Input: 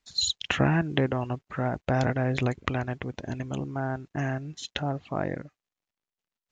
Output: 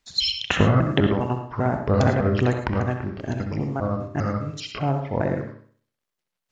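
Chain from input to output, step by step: trilling pitch shifter -4.5 st, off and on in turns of 0.2 s; dynamic EQ 2200 Hz, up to -3 dB, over -46 dBFS, Q 1.2; dark delay 64 ms, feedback 40%, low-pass 3100 Hz, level -8 dB; non-linear reverb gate 0.13 s rising, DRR 7.5 dB; gain +5.5 dB

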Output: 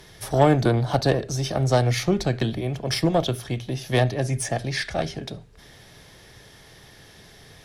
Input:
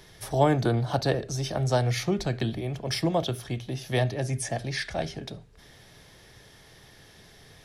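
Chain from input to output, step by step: added harmonics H 6 -23 dB, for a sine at -7.5 dBFS; gain +4 dB

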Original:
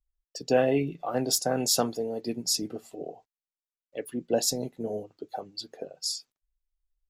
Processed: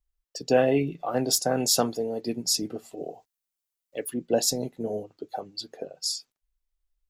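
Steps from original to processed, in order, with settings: 2.97–4.14 high shelf 5400 Hz +9.5 dB; gain +2 dB

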